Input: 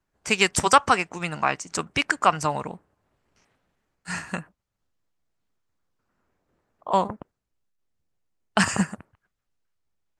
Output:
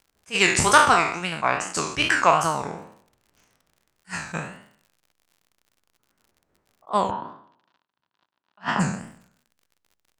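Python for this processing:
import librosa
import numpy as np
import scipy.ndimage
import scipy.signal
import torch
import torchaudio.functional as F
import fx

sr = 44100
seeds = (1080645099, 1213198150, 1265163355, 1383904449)

y = fx.spec_trails(x, sr, decay_s=0.64)
y = fx.dmg_crackle(y, sr, seeds[0], per_s=70.0, level_db=-44.0)
y = fx.wow_flutter(y, sr, seeds[1], rate_hz=2.1, depth_cents=130.0)
y = fx.cabinet(y, sr, low_hz=170.0, low_slope=12, high_hz=4100.0, hz=(470.0, 980.0, 1500.0, 2200.0), db=(-6, 9, 4, -6), at=(7.1, 8.79), fade=0.02)
y = fx.attack_slew(y, sr, db_per_s=380.0)
y = F.gain(torch.from_numpy(y), -1.0).numpy()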